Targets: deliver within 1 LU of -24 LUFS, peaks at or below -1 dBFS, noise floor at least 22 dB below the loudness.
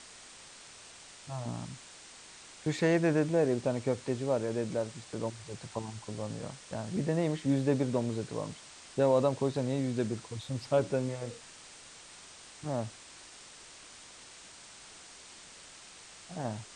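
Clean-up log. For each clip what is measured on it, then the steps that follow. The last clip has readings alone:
noise floor -52 dBFS; noise floor target -55 dBFS; loudness -32.5 LUFS; peak -14.5 dBFS; loudness target -24.0 LUFS
-> denoiser 6 dB, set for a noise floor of -52 dBFS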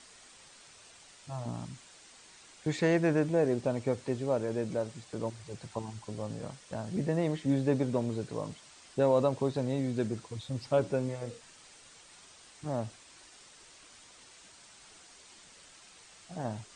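noise floor -56 dBFS; loudness -32.5 LUFS; peak -14.5 dBFS; loudness target -24.0 LUFS
-> gain +8.5 dB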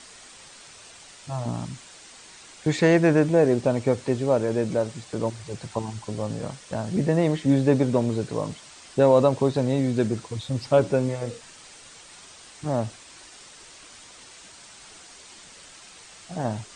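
loudness -24.0 LUFS; peak -6.0 dBFS; noise floor -48 dBFS

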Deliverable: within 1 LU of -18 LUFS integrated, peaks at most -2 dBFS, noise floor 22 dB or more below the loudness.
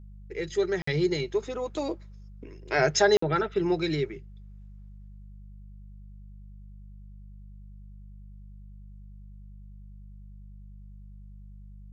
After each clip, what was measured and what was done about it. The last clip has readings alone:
dropouts 2; longest dropout 54 ms; hum 50 Hz; harmonics up to 200 Hz; hum level -43 dBFS; loudness -27.0 LUFS; peak -10.5 dBFS; loudness target -18.0 LUFS
-> interpolate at 0.82/3.17, 54 ms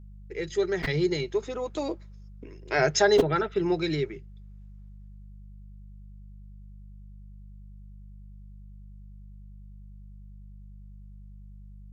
dropouts 0; hum 50 Hz; harmonics up to 200 Hz; hum level -43 dBFS
-> de-hum 50 Hz, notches 4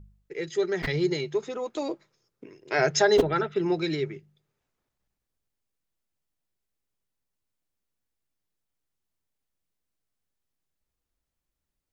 hum none; loudness -26.5 LUFS; peak -8.0 dBFS; loudness target -18.0 LUFS
-> gain +8.5 dB; limiter -2 dBFS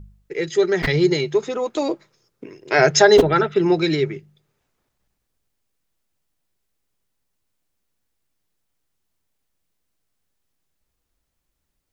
loudness -18.5 LUFS; peak -2.0 dBFS; noise floor -76 dBFS

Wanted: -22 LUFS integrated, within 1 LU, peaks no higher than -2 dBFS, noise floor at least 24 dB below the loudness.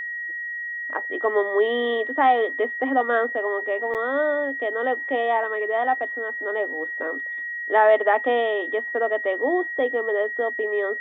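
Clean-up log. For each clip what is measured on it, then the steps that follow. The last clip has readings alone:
dropouts 1; longest dropout 8.2 ms; steady tone 1900 Hz; tone level -28 dBFS; loudness -23.0 LUFS; peak -6.5 dBFS; loudness target -22.0 LUFS
-> interpolate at 3.94, 8.2 ms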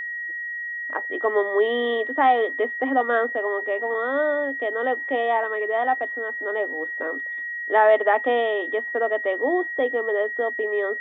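dropouts 0; steady tone 1900 Hz; tone level -28 dBFS
-> notch 1900 Hz, Q 30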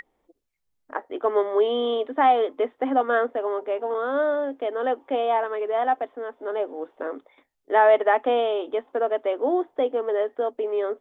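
steady tone none; loudness -24.0 LUFS; peak -7.0 dBFS; loudness target -22.0 LUFS
-> gain +2 dB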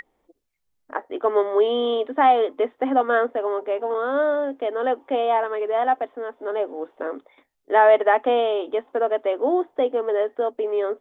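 loudness -22.0 LUFS; peak -5.0 dBFS; noise floor -73 dBFS

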